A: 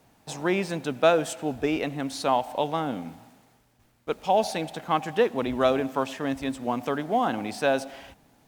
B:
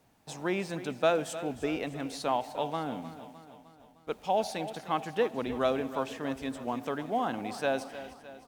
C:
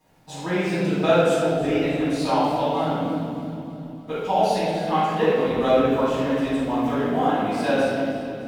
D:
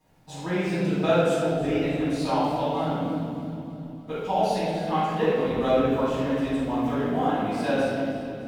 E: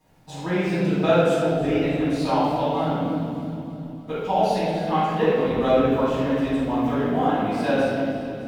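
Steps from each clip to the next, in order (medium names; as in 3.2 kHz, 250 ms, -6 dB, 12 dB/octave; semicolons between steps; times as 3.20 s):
feedback delay 306 ms, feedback 55%, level -14 dB; trim -6 dB
reverberation RT60 2.3 s, pre-delay 4 ms, DRR -12 dB; trim -6 dB
bass shelf 160 Hz +6 dB; trim -4 dB
dynamic bell 8.7 kHz, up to -4 dB, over -53 dBFS, Q 0.72; trim +3 dB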